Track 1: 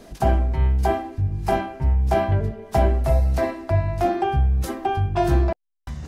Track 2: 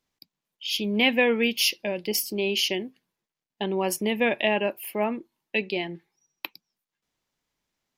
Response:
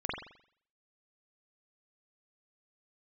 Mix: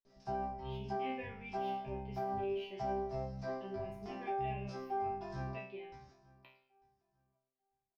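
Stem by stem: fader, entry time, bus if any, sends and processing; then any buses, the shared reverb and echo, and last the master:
−5.0 dB, 0.05 s, no send, echo send −23.5 dB, low-pass with resonance 5,300 Hz, resonance Q 6.7
−7.0 dB, 0.00 s, send −14.5 dB, no echo send, flat-topped bell 7,800 Hz −14.5 dB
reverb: on, pre-delay 43 ms
echo: repeating echo 896 ms, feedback 18%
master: high-shelf EQ 3,500 Hz −11 dB; resonators tuned to a chord C3 fifth, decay 0.51 s; brickwall limiter −29.5 dBFS, peak gain reduction 6.5 dB

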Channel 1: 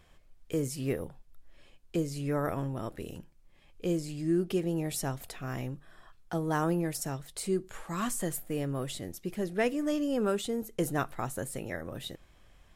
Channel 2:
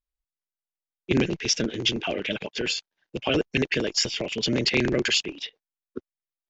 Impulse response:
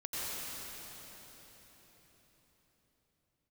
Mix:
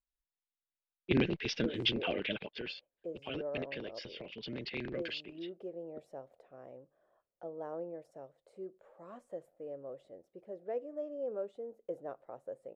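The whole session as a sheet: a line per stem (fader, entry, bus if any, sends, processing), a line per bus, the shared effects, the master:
−2.0 dB, 1.10 s, no send, resonant band-pass 550 Hz, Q 4.8
0:02.24 −6.5 dB → 0:02.84 −17 dB, 0.00 s, no send, Butterworth low-pass 4,400 Hz 36 dB per octave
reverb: not used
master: no processing

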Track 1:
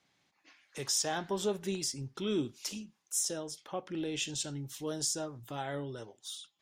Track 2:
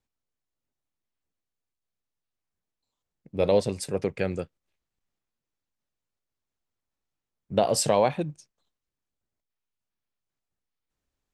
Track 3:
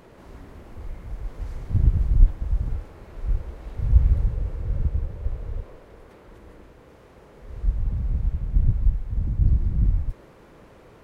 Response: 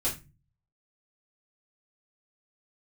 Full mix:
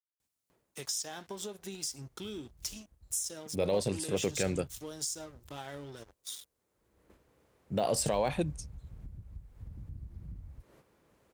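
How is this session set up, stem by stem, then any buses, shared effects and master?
−1.0 dB, 0.00 s, bus A, no send, dead-zone distortion −49 dBFS
−1.5 dB, 0.20 s, no bus, no send, de-essing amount 95%; parametric band 9,600 Hz +4 dB; brickwall limiter −18 dBFS, peak gain reduction 8 dB
−10.5 dB, 0.50 s, bus A, no send, automatic ducking −21 dB, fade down 0.25 s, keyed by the first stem
bus A: 0.0 dB, noise gate −56 dBFS, range −8 dB; downward compressor 6 to 1, threshold −39 dBFS, peak gain reduction 15.5 dB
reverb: not used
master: high-pass filter 53 Hz; high-shelf EQ 4,800 Hz +10 dB

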